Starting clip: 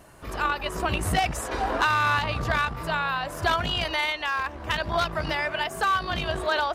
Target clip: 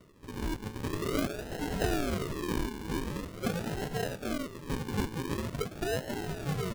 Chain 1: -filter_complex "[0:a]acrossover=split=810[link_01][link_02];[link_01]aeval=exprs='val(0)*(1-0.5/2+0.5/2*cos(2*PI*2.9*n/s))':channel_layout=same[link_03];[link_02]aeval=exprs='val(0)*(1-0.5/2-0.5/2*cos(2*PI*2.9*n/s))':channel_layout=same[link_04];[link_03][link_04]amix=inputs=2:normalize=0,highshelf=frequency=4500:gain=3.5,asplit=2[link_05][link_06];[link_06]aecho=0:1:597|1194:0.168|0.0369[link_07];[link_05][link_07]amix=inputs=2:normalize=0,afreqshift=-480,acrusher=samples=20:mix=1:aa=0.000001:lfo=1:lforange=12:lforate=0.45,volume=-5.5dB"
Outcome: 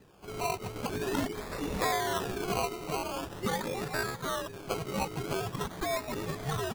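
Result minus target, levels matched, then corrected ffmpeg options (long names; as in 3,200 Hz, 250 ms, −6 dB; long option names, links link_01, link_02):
sample-and-hold swept by an LFO: distortion −11 dB
-filter_complex "[0:a]acrossover=split=810[link_01][link_02];[link_01]aeval=exprs='val(0)*(1-0.5/2+0.5/2*cos(2*PI*2.9*n/s))':channel_layout=same[link_03];[link_02]aeval=exprs='val(0)*(1-0.5/2-0.5/2*cos(2*PI*2.9*n/s))':channel_layout=same[link_04];[link_03][link_04]amix=inputs=2:normalize=0,highshelf=frequency=4500:gain=3.5,asplit=2[link_05][link_06];[link_06]aecho=0:1:597|1194:0.168|0.0369[link_07];[link_05][link_07]amix=inputs=2:normalize=0,afreqshift=-480,acrusher=samples=53:mix=1:aa=0.000001:lfo=1:lforange=31.8:lforate=0.45,volume=-5.5dB"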